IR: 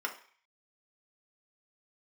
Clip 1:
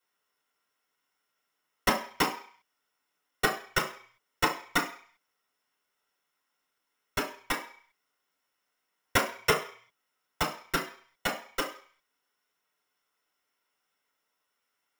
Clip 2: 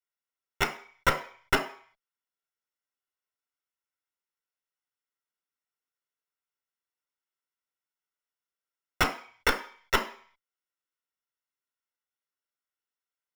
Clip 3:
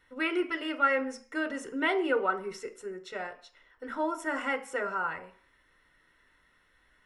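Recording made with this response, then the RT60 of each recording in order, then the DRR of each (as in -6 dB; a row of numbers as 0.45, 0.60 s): 2; 0.45, 0.45, 0.45 s; -3.5, 2.0, 6.0 dB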